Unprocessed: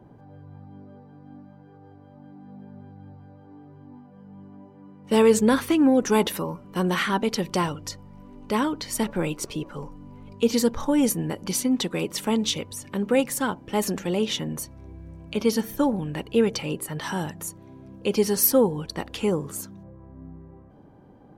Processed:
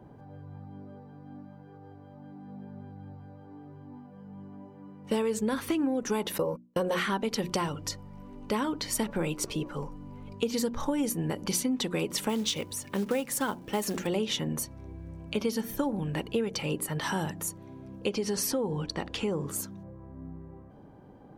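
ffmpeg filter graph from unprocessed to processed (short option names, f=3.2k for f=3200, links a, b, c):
-filter_complex "[0:a]asettb=1/sr,asplit=3[a][b][c];[a]atrim=end=6.384[d];[b]atrim=start=6.38:end=7,asetpts=PTS-STARTPTS,afade=t=in:d=0.004:c=qsin,afade=t=out:st=0.616:d=0.004:c=qsin,agate=range=-39dB:threshold=-35dB:ratio=16:release=100:detection=peak,equalizer=f=510:t=o:w=0.43:g=15[e];[c]atrim=start=6.996[f];[d][e]acrossfade=d=0.004:c1=hsin:c2=qsin[g];[g][f]acrossfade=d=0.004:c1=qsin:c2=hsin,asettb=1/sr,asplit=3[h][i][j];[h]atrim=end=12.294[k];[i]atrim=start=12.29:end=14.07,asetpts=PTS-STARTPTS,afade=t=in:d=0.004:c=qsin,afade=t=out:st=1.776:d=0.004:c=qsin,lowshelf=f=160:g=-4,acrusher=bits=5:mode=log:mix=0:aa=0.000001[l];[j]atrim=start=14.066[m];[k][l]acrossfade=d=0.004:c1=hsin:c2=qsin[n];[n][m]acrossfade=d=0.004:c1=qsin:c2=hsin,asettb=1/sr,asplit=3[o][p][q];[o]atrim=end=18.094[r];[p]atrim=start=18.09:end=19.48,asetpts=PTS-STARTPTS,afade=t=in:d=0.004:c=qsin,afade=t=out:st=1.386:d=0.004:c=qsin,lowpass=7.1k,acompressor=threshold=-25dB:ratio=2.5:attack=3.2:release=140:knee=1:detection=peak[s];[q]atrim=start=19.476[t];[r][s]acrossfade=d=0.004:c1=hsin:c2=qsin[u];[u][t]acrossfade=d=0.004:c1=qsin:c2=hsin,bandreject=f=60:t=h:w=6,bandreject=f=120:t=h:w=6,bandreject=f=180:t=h:w=6,bandreject=f=240:t=h:w=6,bandreject=f=300:t=h:w=6,bandreject=f=360:t=h:w=6,acompressor=threshold=-25dB:ratio=10"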